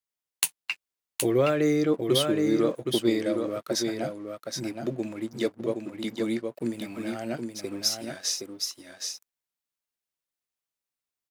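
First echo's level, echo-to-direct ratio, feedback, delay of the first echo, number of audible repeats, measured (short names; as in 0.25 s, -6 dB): -5.0 dB, -5.0 dB, no steady repeat, 0.769 s, 1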